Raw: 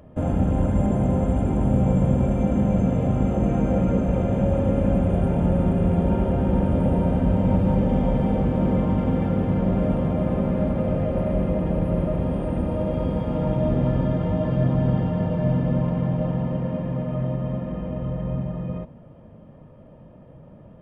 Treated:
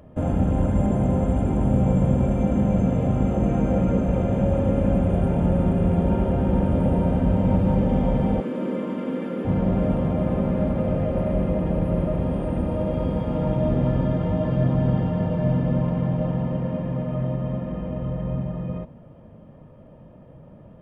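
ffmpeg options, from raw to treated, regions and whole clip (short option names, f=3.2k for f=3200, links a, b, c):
-filter_complex "[0:a]asettb=1/sr,asplit=3[a][b][c];[a]atrim=end=8.404[d];[b]atrim=start=8.4:end=9.45,asetpts=PTS-STARTPTS,afade=t=in:d=0.004:c=qsin,afade=t=out:st=1.046:d=0.004:c=qsin,highpass=f=240:w=0.5412,highpass=f=240:w=1.3066,equalizer=f=770:t=o:w=0.46:g=-12.5[e];[c]atrim=start=9.446[f];[d][e]acrossfade=d=0.004:c1=hsin:c2=qsin[g];[g][f]acrossfade=d=0.004:c1=qsin:c2=hsin"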